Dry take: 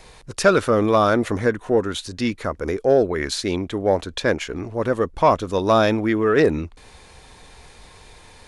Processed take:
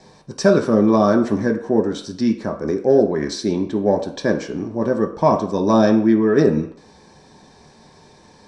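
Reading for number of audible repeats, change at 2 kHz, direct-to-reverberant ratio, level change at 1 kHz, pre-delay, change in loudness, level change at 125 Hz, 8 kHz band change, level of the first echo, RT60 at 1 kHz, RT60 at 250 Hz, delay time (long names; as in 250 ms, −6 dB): no echo audible, −4.0 dB, 2.5 dB, −1.5 dB, 3 ms, +2.0 dB, +2.0 dB, −2.0 dB, no echo audible, 0.60 s, 0.45 s, no echo audible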